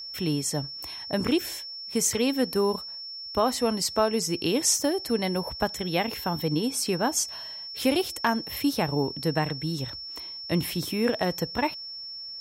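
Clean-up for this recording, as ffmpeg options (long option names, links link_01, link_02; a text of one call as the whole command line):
ffmpeg -i in.wav -af "bandreject=frequency=5400:width=30" out.wav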